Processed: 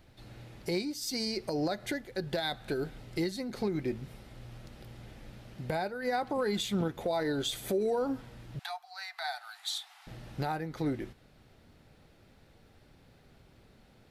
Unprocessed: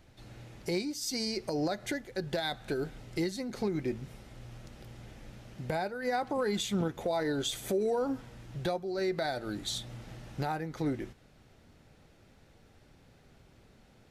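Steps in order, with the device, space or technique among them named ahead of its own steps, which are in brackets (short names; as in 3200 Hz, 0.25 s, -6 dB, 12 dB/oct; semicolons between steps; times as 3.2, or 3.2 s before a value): 8.59–10.07 steep high-pass 710 Hz 96 dB/oct; exciter from parts (in parallel at -9 dB: HPF 4500 Hz 24 dB/oct + soft clip -31.5 dBFS, distortion -18 dB + HPF 3100 Hz 24 dB/oct)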